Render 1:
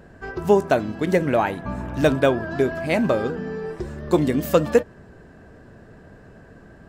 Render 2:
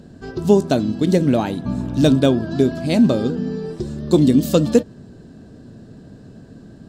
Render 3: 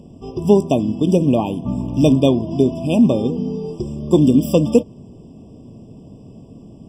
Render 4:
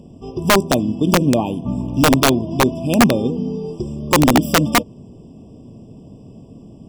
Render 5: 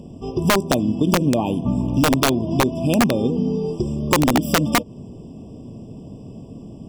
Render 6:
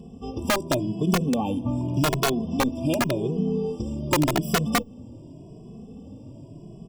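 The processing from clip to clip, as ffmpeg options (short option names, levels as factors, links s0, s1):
-af "equalizer=f=125:t=o:w=1:g=7,equalizer=f=250:t=o:w=1:g=10,equalizer=f=1000:t=o:w=1:g=-3,equalizer=f=2000:t=o:w=1:g=-8,equalizer=f=4000:t=o:w=1:g=11,equalizer=f=8000:t=o:w=1:g=6,volume=0.841"
-af "afftfilt=real='re*eq(mod(floor(b*sr/1024/1200),2),0)':imag='im*eq(mod(floor(b*sr/1024/1200),2),0)':win_size=1024:overlap=0.75,volume=1.12"
-af "aeval=exprs='(mod(1.88*val(0)+1,2)-1)/1.88':c=same"
-af "acompressor=threshold=0.126:ratio=4,volume=1.41"
-filter_complex "[0:a]asplit=2[s0][s1];[s1]adelay=2.3,afreqshift=0.87[s2];[s0][s2]amix=inputs=2:normalize=1,volume=0.794"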